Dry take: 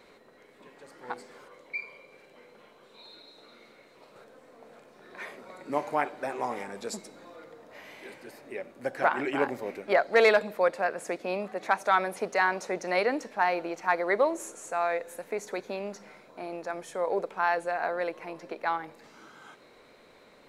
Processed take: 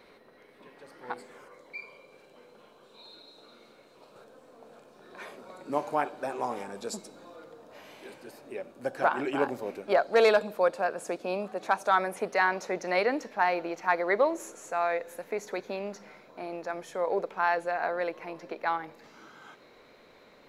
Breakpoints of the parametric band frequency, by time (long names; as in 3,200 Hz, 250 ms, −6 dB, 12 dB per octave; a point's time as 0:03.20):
parametric band −10 dB 0.34 octaves
0:01.10 7,300 Hz
0:01.80 2,000 Hz
0:11.89 2,000 Hz
0:12.39 8,700 Hz